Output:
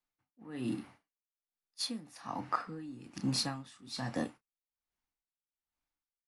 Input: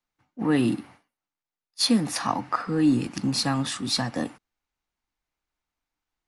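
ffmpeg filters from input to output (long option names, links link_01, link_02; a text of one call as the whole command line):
ffmpeg -i in.wav -filter_complex "[0:a]asplit=2[link_01][link_02];[link_02]adelay=31,volume=-11dB[link_03];[link_01][link_03]amix=inputs=2:normalize=0,aeval=exprs='val(0)*pow(10,-20*(0.5-0.5*cos(2*PI*1.2*n/s))/20)':channel_layout=same,volume=-6dB" out.wav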